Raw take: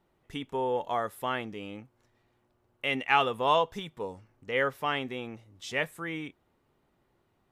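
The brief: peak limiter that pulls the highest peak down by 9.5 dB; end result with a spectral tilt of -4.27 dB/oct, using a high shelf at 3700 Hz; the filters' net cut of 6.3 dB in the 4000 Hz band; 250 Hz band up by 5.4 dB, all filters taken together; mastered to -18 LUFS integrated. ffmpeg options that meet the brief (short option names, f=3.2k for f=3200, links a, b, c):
-af "equalizer=f=250:t=o:g=6.5,highshelf=f=3.7k:g=-3.5,equalizer=f=4k:t=o:g=-7.5,volume=15dB,alimiter=limit=-5dB:level=0:latency=1"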